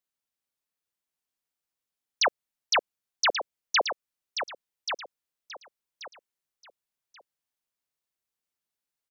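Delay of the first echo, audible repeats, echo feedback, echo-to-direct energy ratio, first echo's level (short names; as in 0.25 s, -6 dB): 1.133 s, 3, 25%, -7.5 dB, -8.0 dB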